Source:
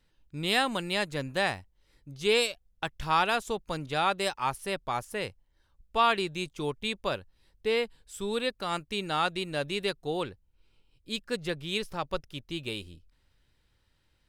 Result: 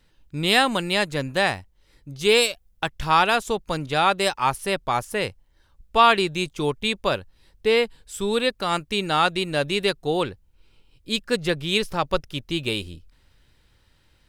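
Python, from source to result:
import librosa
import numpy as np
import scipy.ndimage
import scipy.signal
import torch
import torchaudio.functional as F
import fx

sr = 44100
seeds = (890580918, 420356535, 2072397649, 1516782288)

p1 = fx.high_shelf(x, sr, hz=11000.0, db=7.5, at=(2.19, 2.84))
p2 = fx.rider(p1, sr, range_db=4, speed_s=2.0)
y = p1 + F.gain(torch.from_numpy(p2), 2.5).numpy()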